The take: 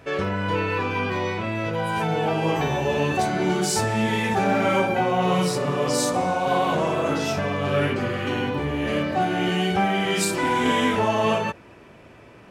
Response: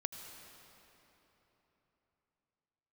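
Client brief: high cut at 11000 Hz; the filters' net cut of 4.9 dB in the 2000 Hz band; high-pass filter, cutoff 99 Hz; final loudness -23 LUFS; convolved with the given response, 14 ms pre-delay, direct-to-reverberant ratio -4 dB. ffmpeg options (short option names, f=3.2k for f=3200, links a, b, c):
-filter_complex "[0:a]highpass=99,lowpass=11k,equalizer=f=2k:t=o:g=-6.5,asplit=2[a][b];[1:a]atrim=start_sample=2205,adelay=14[c];[b][c]afir=irnorm=-1:irlink=0,volume=4.5dB[d];[a][d]amix=inputs=2:normalize=0,volume=-5dB"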